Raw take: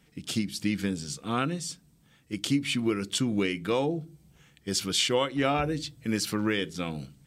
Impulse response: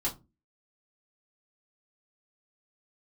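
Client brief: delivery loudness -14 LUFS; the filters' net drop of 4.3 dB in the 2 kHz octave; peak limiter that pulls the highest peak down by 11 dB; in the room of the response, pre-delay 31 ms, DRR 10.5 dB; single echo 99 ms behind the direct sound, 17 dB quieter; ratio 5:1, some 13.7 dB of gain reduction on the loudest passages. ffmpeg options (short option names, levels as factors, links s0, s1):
-filter_complex "[0:a]equalizer=f=2000:t=o:g=-5.5,acompressor=threshold=0.0126:ratio=5,alimiter=level_in=2.66:limit=0.0631:level=0:latency=1,volume=0.376,aecho=1:1:99:0.141,asplit=2[s0][s1];[1:a]atrim=start_sample=2205,adelay=31[s2];[s1][s2]afir=irnorm=-1:irlink=0,volume=0.168[s3];[s0][s3]amix=inputs=2:normalize=0,volume=26.6"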